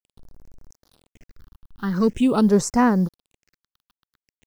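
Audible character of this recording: a quantiser's noise floor 8-bit, dither none; phasing stages 6, 0.45 Hz, lowest notch 560–3300 Hz

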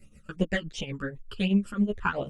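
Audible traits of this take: phasing stages 12, 2.8 Hz, lowest notch 640–1600 Hz; tremolo triangle 7.9 Hz, depth 90%; a shimmering, thickened sound

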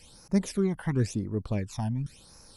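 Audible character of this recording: phasing stages 12, 0.94 Hz, lowest notch 400–3200 Hz

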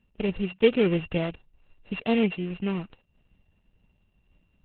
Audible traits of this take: a buzz of ramps at a fixed pitch in blocks of 16 samples; random-step tremolo; Opus

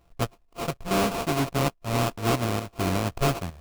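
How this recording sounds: a buzz of ramps at a fixed pitch in blocks of 64 samples; chopped level 1.1 Hz, depth 65%, duty 85%; aliases and images of a low sample rate 1800 Hz, jitter 20%

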